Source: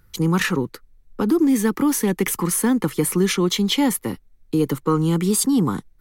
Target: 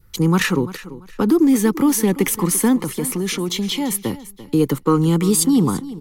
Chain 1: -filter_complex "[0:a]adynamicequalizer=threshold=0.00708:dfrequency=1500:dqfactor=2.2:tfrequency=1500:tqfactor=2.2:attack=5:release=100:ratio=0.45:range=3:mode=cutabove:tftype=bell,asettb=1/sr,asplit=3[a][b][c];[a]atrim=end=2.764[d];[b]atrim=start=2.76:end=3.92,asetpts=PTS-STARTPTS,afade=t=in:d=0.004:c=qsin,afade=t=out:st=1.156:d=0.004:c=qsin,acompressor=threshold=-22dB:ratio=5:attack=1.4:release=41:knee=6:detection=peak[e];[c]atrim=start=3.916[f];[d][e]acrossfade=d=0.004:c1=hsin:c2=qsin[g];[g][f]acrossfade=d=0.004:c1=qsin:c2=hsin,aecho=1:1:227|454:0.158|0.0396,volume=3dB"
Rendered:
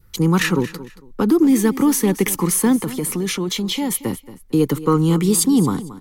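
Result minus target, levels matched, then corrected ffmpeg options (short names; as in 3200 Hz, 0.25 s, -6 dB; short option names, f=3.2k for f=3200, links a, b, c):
echo 0.114 s early
-filter_complex "[0:a]adynamicequalizer=threshold=0.00708:dfrequency=1500:dqfactor=2.2:tfrequency=1500:tqfactor=2.2:attack=5:release=100:ratio=0.45:range=3:mode=cutabove:tftype=bell,asettb=1/sr,asplit=3[a][b][c];[a]atrim=end=2.764[d];[b]atrim=start=2.76:end=3.92,asetpts=PTS-STARTPTS,afade=t=in:d=0.004:c=qsin,afade=t=out:st=1.156:d=0.004:c=qsin,acompressor=threshold=-22dB:ratio=5:attack=1.4:release=41:knee=6:detection=peak[e];[c]atrim=start=3.916[f];[d][e]acrossfade=d=0.004:c1=hsin:c2=qsin[g];[g][f]acrossfade=d=0.004:c1=qsin:c2=hsin,aecho=1:1:341|682:0.158|0.0396,volume=3dB"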